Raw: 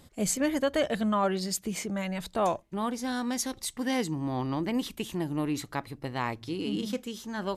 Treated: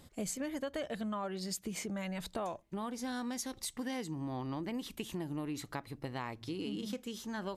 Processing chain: compression, threshold -33 dBFS, peak gain reduction 10.5 dB; trim -2.5 dB

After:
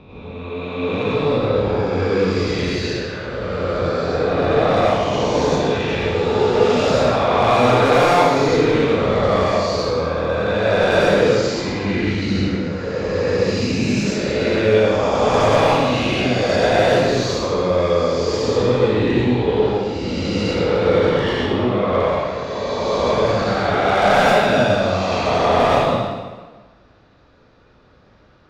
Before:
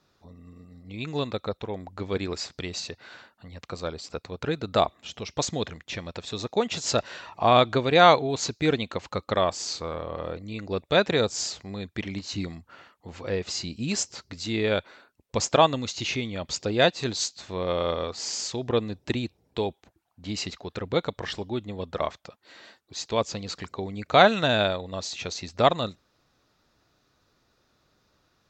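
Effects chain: reverse spectral sustain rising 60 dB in 2.33 s; low-pass 2.9 kHz 12 dB/octave; bass shelf 450 Hz +4 dB; in parallel at +0.5 dB: compression, threshold -29 dBFS, peak gain reduction 20 dB; on the sum: saturation -15 dBFS, distortion -9 dB; reverberation RT60 1.4 s, pre-delay 79 ms, DRR -7.5 dB; trim -3.5 dB

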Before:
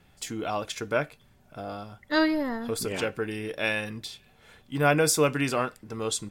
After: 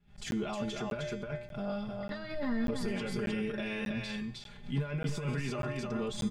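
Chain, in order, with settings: tracing distortion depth 0.05 ms; low-pass 6.7 kHz 12 dB/octave; treble shelf 4 kHz +9 dB; feedback comb 120 Hz, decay 0.62 s, harmonics odd, mix 70%; gate with hold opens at -57 dBFS; compressor with a negative ratio -39 dBFS, ratio -1; comb 4.9 ms, depth 99%; delay 310 ms -4.5 dB; peak limiter -29 dBFS, peak gain reduction 8 dB; tone controls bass +12 dB, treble -8 dB; crackling interface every 0.59 s, samples 512, zero, from 0.31 s; swell ahead of each attack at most 140 dB/s

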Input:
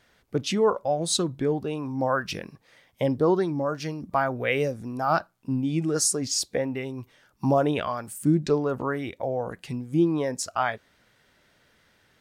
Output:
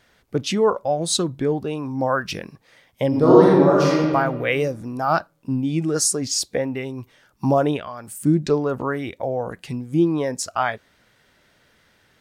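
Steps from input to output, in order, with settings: 3.08–4.01 s: reverb throw, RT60 1.6 s, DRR -7 dB; 7.76–8.18 s: compression 10:1, threshold -32 dBFS, peak gain reduction 8.5 dB; trim +3.5 dB

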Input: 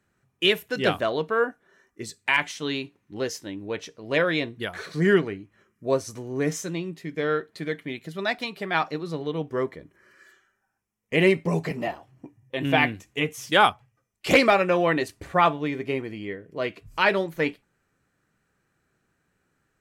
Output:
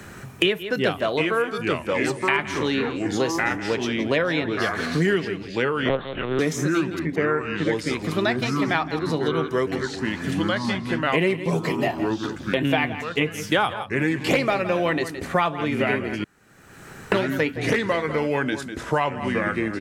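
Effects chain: 6.99–7.76 s: Chebyshev low-pass 2.1 kHz, order 5; delay 166 ms -14.5 dB; ever faster or slower copies 674 ms, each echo -3 st, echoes 3, each echo -6 dB; 2.44–3.32 s: doubling 40 ms -12 dB; 5.89–6.39 s: LPC vocoder at 8 kHz pitch kept; 16.24–17.12 s: room tone; three bands compressed up and down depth 100%; trim +1 dB

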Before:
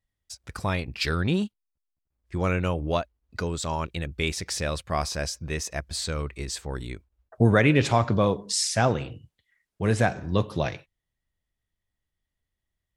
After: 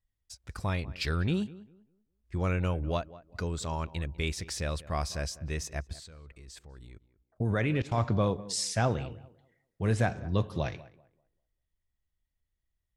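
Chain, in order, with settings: bass shelf 86 Hz +10.5 dB; 5.93–7.98 s: level held to a coarse grid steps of 21 dB; tape echo 196 ms, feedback 28%, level -16.5 dB, low-pass 1.4 kHz; trim -6.5 dB

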